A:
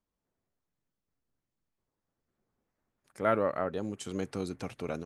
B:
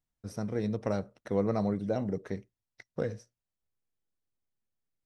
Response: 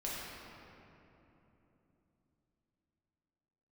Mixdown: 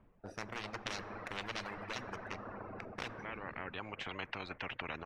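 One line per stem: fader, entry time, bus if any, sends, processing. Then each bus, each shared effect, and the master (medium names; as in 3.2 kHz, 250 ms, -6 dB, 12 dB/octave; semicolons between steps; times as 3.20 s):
+1.0 dB, 0.00 s, no send, Chebyshev low-pass 2.5 kHz, order 3; auto duck -17 dB, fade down 1.15 s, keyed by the second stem
-12.5 dB, 0.00 s, send -6.5 dB, local Wiener filter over 41 samples; Chebyshev shaper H 5 -8 dB, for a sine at -15.5 dBFS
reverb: on, RT60 3.3 s, pre-delay 5 ms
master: reverb removal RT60 0.85 s; treble shelf 2.5 kHz -11 dB; spectrum-flattening compressor 10:1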